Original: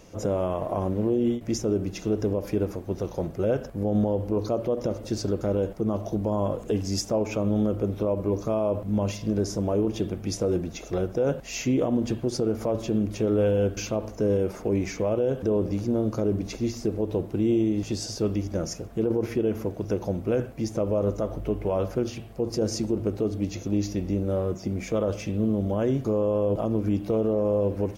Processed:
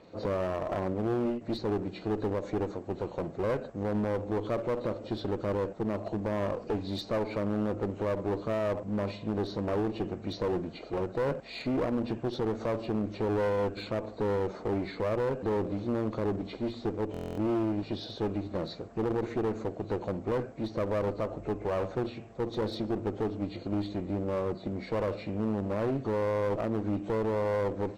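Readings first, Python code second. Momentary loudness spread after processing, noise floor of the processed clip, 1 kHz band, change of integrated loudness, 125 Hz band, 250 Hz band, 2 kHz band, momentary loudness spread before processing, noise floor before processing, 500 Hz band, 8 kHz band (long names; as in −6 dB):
5 LU, −46 dBFS, +0.5 dB, −5.5 dB, −7.0 dB, −6.0 dB, +0.5 dB, 6 LU, −41 dBFS, −5.0 dB, below −20 dB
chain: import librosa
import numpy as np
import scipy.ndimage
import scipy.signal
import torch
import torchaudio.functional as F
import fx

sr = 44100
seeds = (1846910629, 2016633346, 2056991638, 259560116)

y = fx.freq_compress(x, sr, knee_hz=2000.0, ratio=1.5)
y = fx.highpass(y, sr, hz=260.0, slope=6)
y = fx.high_shelf(y, sr, hz=2600.0, db=-10.5)
y = fx.clip_asym(y, sr, top_db=-32.5, bottom_db=-21.0)
y = fx.buffer_glitch(y, sr, at_s=(17.12,), block=1024, repeats=10)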